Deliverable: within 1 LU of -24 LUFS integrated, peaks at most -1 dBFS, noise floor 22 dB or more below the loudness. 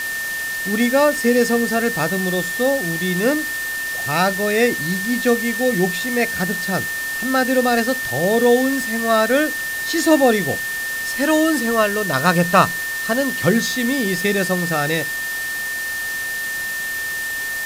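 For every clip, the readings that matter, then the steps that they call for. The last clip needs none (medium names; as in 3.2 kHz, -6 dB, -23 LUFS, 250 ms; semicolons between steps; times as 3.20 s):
steady tone 1.8 kHz; tone level -23 dBFS; noise floor -25 dBFS; noise floor target -41 dBFS; loudness -18.5 LUFS; peak level -1.5 dBFS; loudness target -24.0 LUFS
-> band-stop 1.8 kHz, Q 30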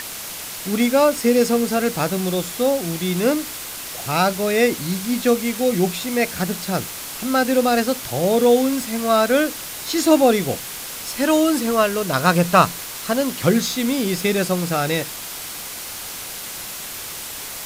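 steady tone not found; noise floor -32 dBFS; noise floor target -42 dBFS
-> noise reduction 10 dB, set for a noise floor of -32 dBFS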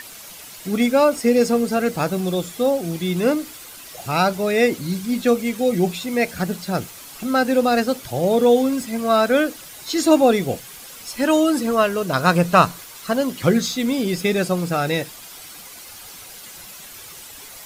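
noise floor -40 dBFS; noise floor target -42 dBFS
-> noise reduction 6 dB, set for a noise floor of -40 dBFS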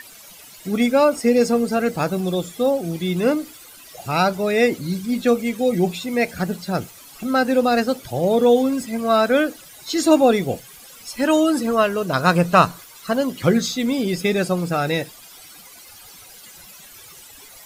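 noise floor -44 dBFS; loudness -20.0 LUFS; peak level -2.0 dBFS; loudness target -24.0 LUFS
-> trim -4 dB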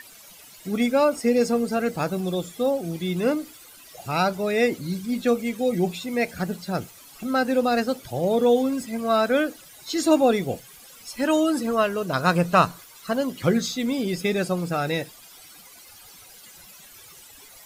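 loudness -24.0 LUFS; peak level -6.0 dBFS; noise floor -48 dBFS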